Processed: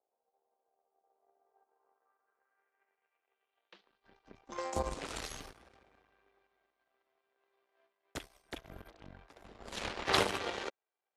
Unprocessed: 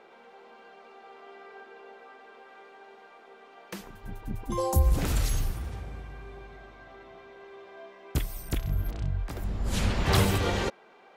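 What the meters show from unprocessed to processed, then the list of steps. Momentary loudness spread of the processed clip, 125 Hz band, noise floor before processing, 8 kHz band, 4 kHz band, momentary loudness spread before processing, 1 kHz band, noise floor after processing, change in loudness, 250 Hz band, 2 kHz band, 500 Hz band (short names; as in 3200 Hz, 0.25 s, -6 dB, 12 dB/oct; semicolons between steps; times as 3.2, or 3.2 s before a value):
24 LU, -22.0 dB, -54 dBFS, -9.0 dB, -3.5 dB, 24 LU, -5.0 dB, under -85 dBFS, -8.0 dB, -12.5 dB, -4.5 dB, -6.5 dB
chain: power-law curve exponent 2; three-band isolator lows -18 dB, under 300 Hz, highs -18 dB, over 6200 Hz; low-pass sweep 710 Hz -> 11000 Hz, 1.37–5.27; gain +3.5 dB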